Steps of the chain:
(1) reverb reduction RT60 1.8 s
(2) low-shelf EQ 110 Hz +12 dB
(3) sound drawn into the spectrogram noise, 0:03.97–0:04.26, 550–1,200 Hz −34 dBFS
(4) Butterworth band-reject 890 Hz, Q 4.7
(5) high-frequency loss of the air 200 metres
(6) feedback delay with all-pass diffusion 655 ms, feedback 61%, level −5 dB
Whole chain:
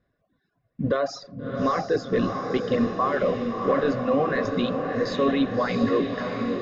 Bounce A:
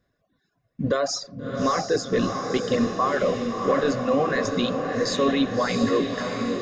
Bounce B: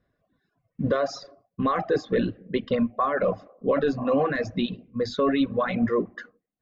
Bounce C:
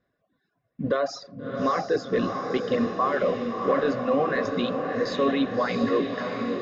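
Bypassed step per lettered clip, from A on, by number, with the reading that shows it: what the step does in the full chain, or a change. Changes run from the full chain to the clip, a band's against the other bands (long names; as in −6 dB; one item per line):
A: 5, 4 kHz band +5.5 dB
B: 6, echo-to-direct ratio −3.0 dB to none audible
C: 2, 125 Hz band −4.5 dB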